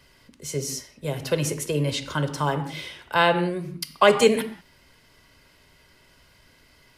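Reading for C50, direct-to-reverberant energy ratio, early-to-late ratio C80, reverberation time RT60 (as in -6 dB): 11.0 dB, 8.5 dB, 13.5 dB, no single decay rate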